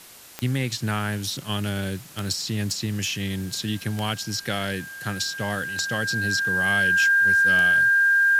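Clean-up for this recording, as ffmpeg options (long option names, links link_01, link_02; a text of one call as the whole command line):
ffmpeg -i in.wav -af "adeclick=threshold=4,bandreject=frequency=1600:width=30,afwtdn=0.0056" out.wav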